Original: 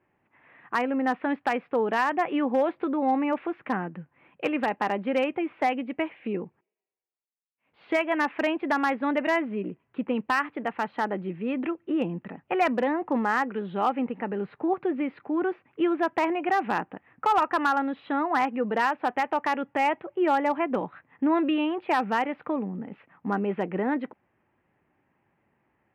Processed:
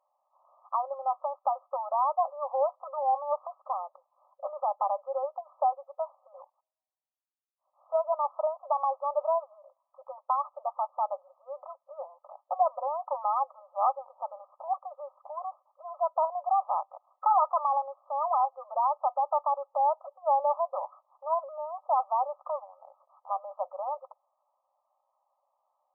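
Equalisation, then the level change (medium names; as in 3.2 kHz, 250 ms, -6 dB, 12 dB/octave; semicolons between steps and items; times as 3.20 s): brick-wall FIR band-pass 530–1300 Hz; 0.0 dB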